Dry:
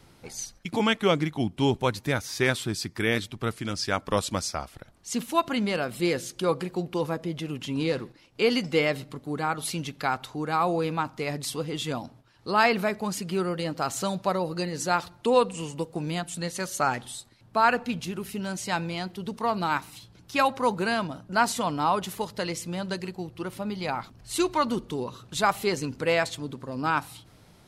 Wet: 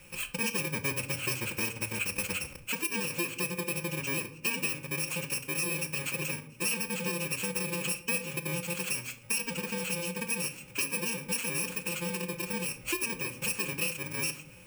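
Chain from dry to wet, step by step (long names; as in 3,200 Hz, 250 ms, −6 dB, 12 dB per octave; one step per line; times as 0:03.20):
samples in bit-reversed order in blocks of 64 samples
parametric band 2,500 Hz +6.5 dB 2.3 octaves
on a send at −5.5 dB: convolution reverb RT60 0.85 s, pre-delay 5 ms
on the sum: phase-vocoder stretch with locked phases 0.53×
thirty-one-band graphic EQ 500 Hz +9 dB, 2,500 Hz +12 dB, 4,000 Hz −7 dB, 8,000 Hz +6 dB
in parallel at −11 dB: wave folding −16 dBFS
on the sum: downward compressor 3 to 1, threshold −30 dBFS, peak gain reduction 13 dB
level −2 dB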